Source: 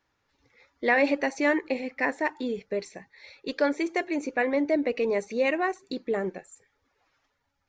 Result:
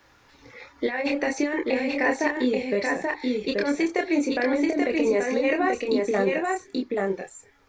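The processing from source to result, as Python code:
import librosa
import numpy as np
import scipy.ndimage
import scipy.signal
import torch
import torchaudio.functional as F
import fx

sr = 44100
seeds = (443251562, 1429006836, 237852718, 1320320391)

y = fx.over_compress(x, sr, threshold_db=-26.0, ratio=-0.5)
y = fx.chorus_voices(y, sr, voices=6, hz=0.31, base_ms=26, depth_ms=2.1, mix_pct=40)
y = y + 10.0 ** (-3.5 / 20.0) * np.pad(y, (int(832 * sr / 1000.0), 0))[:len(y)]
y = fx.band_squash(y, sr, depth_pct=40)
y = F.gain(torch.from_numpy(y), 6.5).numpy()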